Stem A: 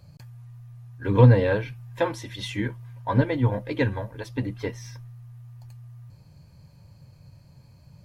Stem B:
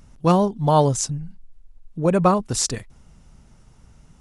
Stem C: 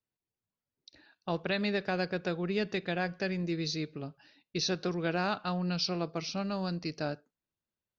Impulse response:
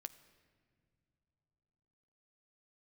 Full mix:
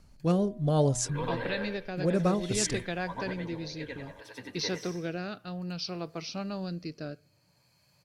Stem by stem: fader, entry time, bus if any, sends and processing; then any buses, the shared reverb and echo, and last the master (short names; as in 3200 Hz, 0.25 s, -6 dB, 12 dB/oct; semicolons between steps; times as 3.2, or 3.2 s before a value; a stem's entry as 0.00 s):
-2.0 dB, 0.00 s, send -12 dB, echo send -4.5 dB, HPF 1100 Hz 6 dB/oct; auto duck -11 dB, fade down 0.35 s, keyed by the second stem
-5.5 dB, 0.00 s, no send, no echo send, de-hum 123.6 Hz, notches 8
-2.0 dB, 0.00 s, send -14.5 dB, no echo send, dry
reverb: on, pre-delay 9 ms
echo: feedback echo 95 ms, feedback 42%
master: rotary speaker horn 0.6 Hz